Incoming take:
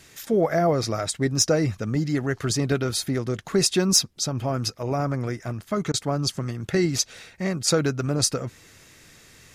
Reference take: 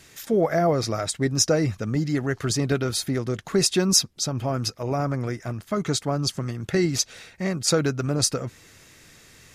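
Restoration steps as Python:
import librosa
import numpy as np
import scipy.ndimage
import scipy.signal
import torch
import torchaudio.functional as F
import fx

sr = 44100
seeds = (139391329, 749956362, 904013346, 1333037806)

y = fx.fix_declip(x, sr, threshold_db=-8.5)
y = fx.fix_interpolate(y, sr, at_s=(5.92,), length_ms=17.0)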